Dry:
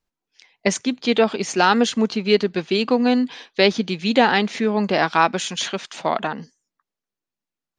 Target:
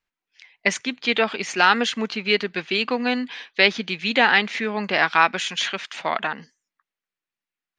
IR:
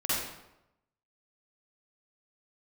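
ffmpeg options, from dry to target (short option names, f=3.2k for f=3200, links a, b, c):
-af "equalizer=f=2.1k:w=0.63:g=13.5,volume=-8dB"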